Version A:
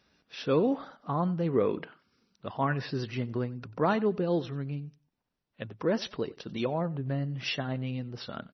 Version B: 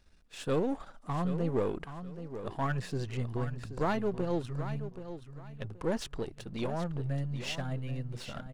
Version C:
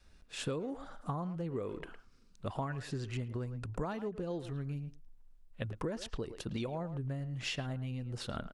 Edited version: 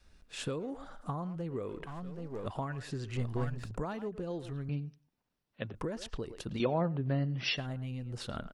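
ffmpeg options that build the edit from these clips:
-filter_complex "[1:a]asplit=2[s0][s1];[0:a]asplit=2[s2][s3];[2:a]asplit=5[s4][s5][s6][s7][s8];[s4]atrim=end=1.862[s9];[s0]atrim=start=1.858:end=2.462[s10];[s5]atrim=start=2.458:end=3.162[s11];[s1]atrim=start=3.158:end=3.712[s12];[s6]atrim=start=3.708:end=4.692[s13];[s2]atrim=start=4.688:end=5.742[s14];[s7]atrim=start=5.738:end=6.602[s15];[s3]atrim=start=6.598:end=7.572[s16];[s8]atrim=start=7.568[s17];[s9][s10]acrossfade=d=0.004:c1=hsin:c2=hsin[s18];[s18][s11]acrossfade=d=0.004:c1=hsin:c2=hsin[s19];[s19][s12]acrossfade=d=0.004:c1=hsin:c2=hsin[s20];[s20][s13]acrossfade=d=0.004:c1=hsin:c2=hsin[s21];[s21][s14]acrossfade=d=0.004:c1=hsin:c2=hsin[s22];[s22][s15]acrossfade=d=0.004:c1=hsin:c2=hsin[s23];[s23][s16]acrossfade=d=0.004:c1=hsin:c2=hsin[s24];[s24][s17]acrossfade=d=0.004:c1=hsin:c2=hsin"

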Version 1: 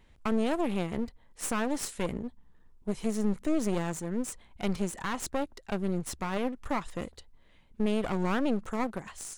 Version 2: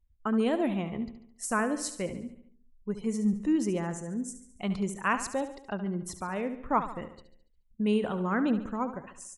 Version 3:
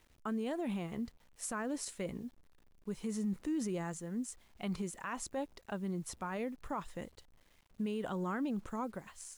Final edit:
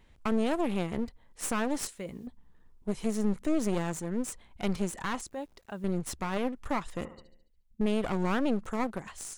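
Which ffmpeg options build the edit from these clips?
-filter_complex "[2:a]asplit=2[s0][s1];[0:a]asplit=4[s2][s3][s4][s5];[s2]atrim=end=1.872[s6];[s0]atrim=start=1.868:end=2.272[s7];[s3]atrim=start=2.268:end=5.212[s8];[s1]atrim=start=5.208:end=5.842[s9];[s4]atrim=start=5.838:end=7.052[s10];[1:a]atrim=start=7.048:end=7.812[s11];[s5]atrim=start=7.808[s12];[s6][s7]acrossfade=d=0.004:c1=hsin:c2=hsin[s13];[s13][s8]acrossfade=d=0.004:c1=hsin:c2=hsin[s14];[s14][s9]acrossfade=d=0.004:c1=hsin:c2=hsin[s15];[s15][s10]acrossfade=d=0.004:c1=hsin:c2=hsin[s16];[s16][s11]acrossfade=d=0.004:c1=hsin:c2=hsin[s17];[s17][s12]acrossfade=d=0.004:c1=hsin:c2=hsin"

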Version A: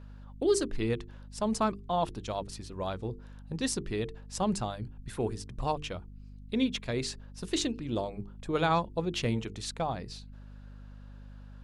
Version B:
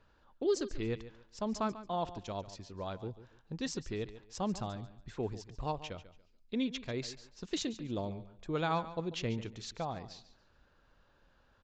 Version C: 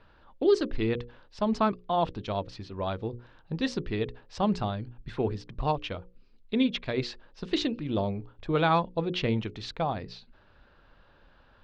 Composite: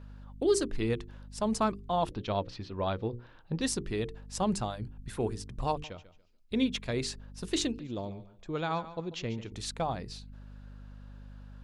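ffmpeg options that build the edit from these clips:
-filter_complex "[1:a]asplit=2[s0][s1];[0:a]asplit=4[s2][s3][s4][s5];[s2]atrim=end=2.122[s6];[2:a]atrim=start=2.118:end=3.612[s7];[s3]atrim=start=3.608:end=5.842[s8];[s0]atrim=start=5.838:end=6.512[s9];[s4]atrim=start=6.508:end=7.792[s10];[s1]atrim=start=7.788:end=9.522[s11];[s5]atrim=start=9.518[s12];[s6][s7]acrossfade=d=0.004:c1=hsin:c2=hsin[s13];[s13][s8]acrossfade=d=0.004:c1=hsin:c2=hsin[s14];[s14][s9]acrossfade=d=0.004:c1=hsin:c2=hsin[s15];[s15][s10]acrossfade=d=0.004:c1=hsin:c2=hsin[s16];[s16][s11]acrossfade=d=0.004:c1=hsin:c2=hsin[s17];[s17][s12]acrossfade=d=0.004:c1=hsin:c2=hsin"

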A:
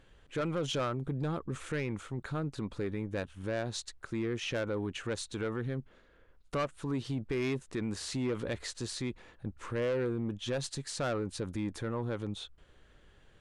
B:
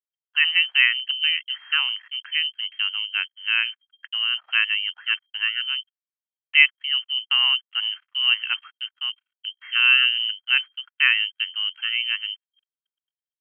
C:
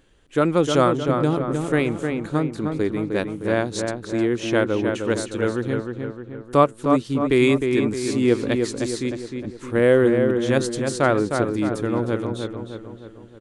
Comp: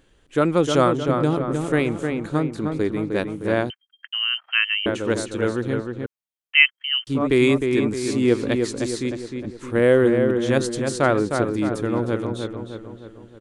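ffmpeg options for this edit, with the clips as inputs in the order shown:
-filter_complex "[1:a]asplit=2[s0][s1];[2:a]asplit=3[s2][s3][s4];[s2]atrim=end=3.702[s5];[s0]atrim=start=3.698:end=4.862[s6];[s3]atrim=start=4.858:end=6.062[s7];[s1]atrim=start=6.058:end=7.072[s8];[s4]atrim=start=7.068[s9];[s5][s6]acrossfade=d=0.004:c1=hsin:c2=hsin[s10];[s10][s7]acrossfade=d=0.004:c1=hsin:c2=hsin[s11];[s11][s8]acrossfade=d=0.004:c1=hsin:c2=hsin[s12];[s12][s9]acrossfade=d=0.004:c1=hsin:c2=hsin"

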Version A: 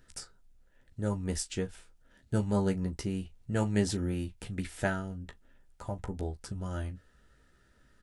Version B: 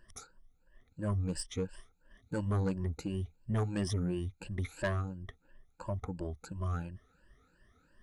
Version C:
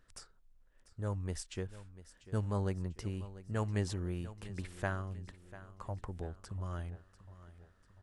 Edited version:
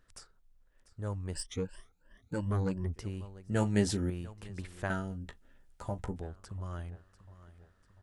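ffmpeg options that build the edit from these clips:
-filter_complex "[0:a]asplit=2[s0][s1];[2:a]asplit=4[s2][s3][s4][s5];[s2]atrim=end=1.342[s6];[1:a]atrim=start=1.338:end=2.942[s7];[s3]atrim=start=2.938:end=3.502[s8];[s0]atrim=start=3.498:end=4.102[s9];[s4]atrim=start=4.098:end=4.902[s10];[s1]atrim=start=4.898:end=6.162[s11];[s5]atrim=start=6.158[s12];[s6][s7]acrossfade=d=0.004:c1=hsin:c2=hsin[s13];[s13][s8]acrossfade=d=0.004:c1=hsin:c2=hsin[s14];[s14][s9]acrossfade=d=0.004:c1=hsin:c2=hsin[s15];[s15][s10]acrossfade=d=0.004:c1=hsin:c2=hsin[s16];[s16][s11]acrossfade=d=0.004:c1=hsin:c2=hsin[s17];[s17][s12]acrossfade=d=0.004:c1=hsin:c2=hsin"

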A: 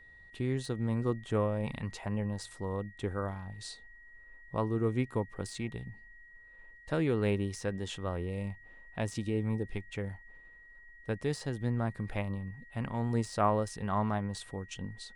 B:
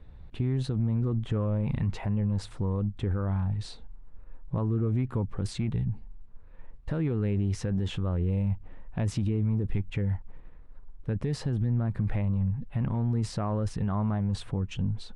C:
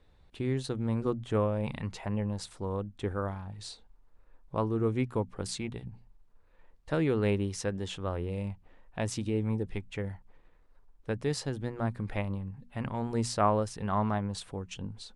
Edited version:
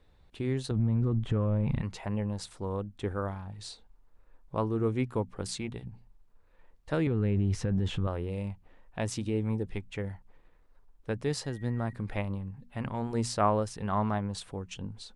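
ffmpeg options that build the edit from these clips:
-filter_complex "[1:a]asplit=2[s0][s1];[2:a]asplit=4[s2][s3][s4][s5];[s2]atrim=end=0.712[s6];[s0]atrim=start=0.708:end=1.812[s7];[s3]atrim=start=1.808:end=7.072[s8];[s1]atrim=start=7.068:end=8.072[s9];[s4]atrim=start=8.068:end=11.442[s10];[0:a]atrim=start=11.438:end=11.932[s11];[s5]atrim=start=11.928[s12];[s6][s7]acrossfade=d=0.004:c1=hsin:c2=hsin[s13];[s13][s8]acrossfade=d=0.004:c1=hsin:c2=hsin[s14];[s14][s9]acrossfade=d=0.004:c1=hsin:c2=hsin[s15];[s15][s10]acrossfade=d=0.004:c1=hsin:c2=hsin[s16];[s16][s11]acrossfade=d=0.004:c1=hsin:c2=hsin[s17];[s17][s12]acrossfade=d=0.004:c1=hsin:c2=hsin"

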